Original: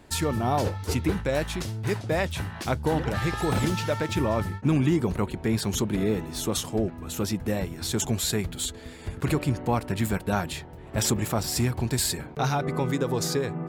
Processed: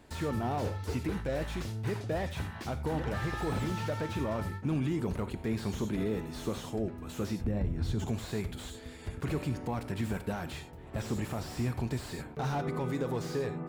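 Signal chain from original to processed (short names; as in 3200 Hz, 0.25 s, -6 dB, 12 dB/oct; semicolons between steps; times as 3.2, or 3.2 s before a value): 7.44–8.05 RIAA curve playback; limiter -18.5 dBFS, peak gain reduction 11 dB; non-linear reverb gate 0.12 s flat, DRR 12 dB; slew limiter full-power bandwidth 45 Hz; gain -5 dB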